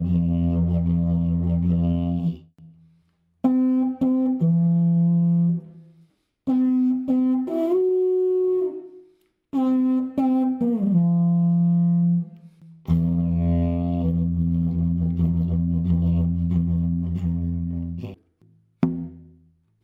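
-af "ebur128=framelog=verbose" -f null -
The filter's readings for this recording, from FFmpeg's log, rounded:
Integrated loudness:
  I:         -22.0 LUFS
  Threshold: -32.8 LUFS
Loudness range:
  LRA:         2.7 LU
  Threshold: -42.5 LUFS
  LRA low:   -24.0 LUFS
  LRA high:  -21.3 LUFS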